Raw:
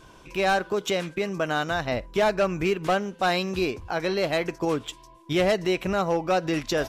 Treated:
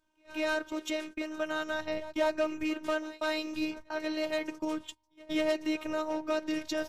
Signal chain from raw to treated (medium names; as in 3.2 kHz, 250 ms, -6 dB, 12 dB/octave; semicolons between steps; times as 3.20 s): reverse echo 190 ms -15.5 dB; gate -35 dBFS, range -20 dB; robot voice 310 Hz; de-hum 48.26 Hz, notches 2; trim -5.5 dB